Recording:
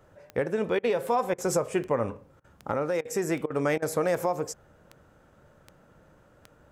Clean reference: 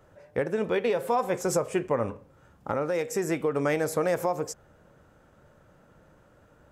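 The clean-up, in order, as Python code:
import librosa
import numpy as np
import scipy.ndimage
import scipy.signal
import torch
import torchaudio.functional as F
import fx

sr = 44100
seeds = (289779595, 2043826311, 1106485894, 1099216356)

y = fx.fix_declick_ar(x, sr, threshold=10.0)
y = fx.fix_interpolate(y, sr, at_s=(0.79, 1.34, 2.4, 3.01, 3.46, 3.78), length_ms=41.0)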